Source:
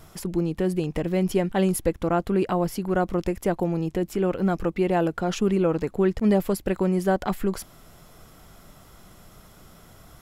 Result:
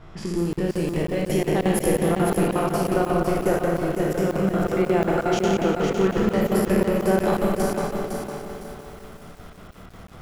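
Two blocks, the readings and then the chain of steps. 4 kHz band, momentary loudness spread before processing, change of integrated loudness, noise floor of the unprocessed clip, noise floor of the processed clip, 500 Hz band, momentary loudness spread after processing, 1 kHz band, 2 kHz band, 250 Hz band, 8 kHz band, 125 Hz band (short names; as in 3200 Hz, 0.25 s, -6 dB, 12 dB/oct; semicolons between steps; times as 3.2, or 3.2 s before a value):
+4.5 dB, 5 LU, +2.0 dB, -51 dBFS, -43 dBFS, +3.0 dB, 9 LU, +3.5 dB, +5.0 dB, +1.5 dB, +4.0 dB, +1.5 dB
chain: spectral trails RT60 1.43 s; in parallel at +0.5 dB: compressor, threshold -33 dBFS, peak gain reduction 17 dB; on the sum: spring tank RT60 3.3 s, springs 52 ms, chirp 55 ms, DRR 0.5 dB; low-pass opened by the level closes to 2500 Hz, open at -14.5 dBFS; on a send: thin delay 0.803 s, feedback 48%, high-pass 1800 Hz, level -18.5 dB; on the sum: crackling interface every 0.18 s, samples 2048, zero, from 0.53; lo-fi delay 0.507 s, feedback 35%, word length 7-bit, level -5.5 dB; gain -5 dB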